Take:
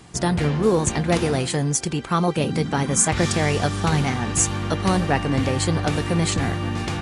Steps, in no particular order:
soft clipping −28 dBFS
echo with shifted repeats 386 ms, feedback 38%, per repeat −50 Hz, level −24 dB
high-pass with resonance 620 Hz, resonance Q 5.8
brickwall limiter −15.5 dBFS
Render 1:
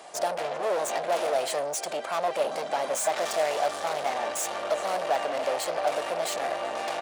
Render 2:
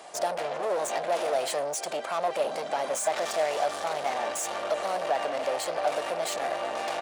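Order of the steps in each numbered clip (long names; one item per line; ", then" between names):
echo with shifted repeats, then soft clipping, then brickwall limiter, then high-pass with resonance
brickwall limiter, then echo with shifted repeats, then soft clipping, then high-pass with resonance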